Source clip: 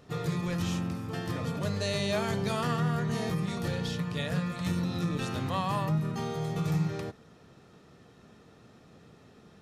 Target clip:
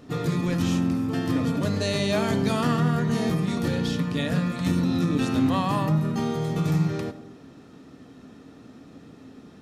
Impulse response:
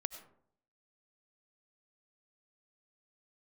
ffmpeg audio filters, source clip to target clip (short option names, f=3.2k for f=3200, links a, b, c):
-filter_complex "[0:a]equalizer=f=270:t=o:w=0.41:g=14,asplit=2[a][b];[1:a]atrim=start_sample=2205[c];[b][c]afir=irnorm=-1:irlink=0,volume=1.5dB[d];[a][d]amix=inputs=2:normalize=0,volume=-2dB"